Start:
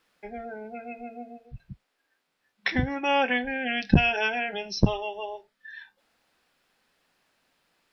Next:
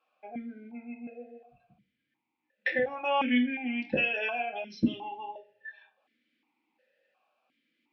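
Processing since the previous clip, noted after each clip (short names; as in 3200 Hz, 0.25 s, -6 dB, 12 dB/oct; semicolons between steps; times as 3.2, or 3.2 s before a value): on a send at -2 dB: reverb, pre-delay 3 ms; on the sum: vowel sequencer 2.8 Hz; gain +5.5 dB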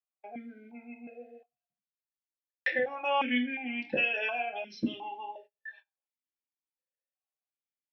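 gate -51 dBFS, range -31 dB; low shelf 200 Hz -12 dB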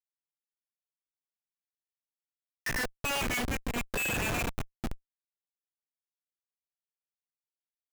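power-law curve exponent 2; band shelf 2200 Hz +13 dB; Schmitt trigger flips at -34 dBFS; gain +3.5 dB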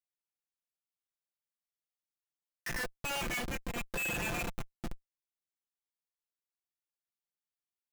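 comb 5.8 ms, depth 44%; gain -5.5 dB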